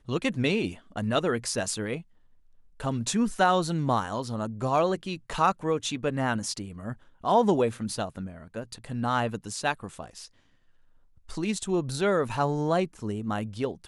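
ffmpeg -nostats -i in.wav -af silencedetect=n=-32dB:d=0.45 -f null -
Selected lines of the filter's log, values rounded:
silence_start: 1.98
silence_end: 2.80 | silence_duration: 0.82
silence_start: 10.18
silence_end: 11.31 | silence_duration: 1.14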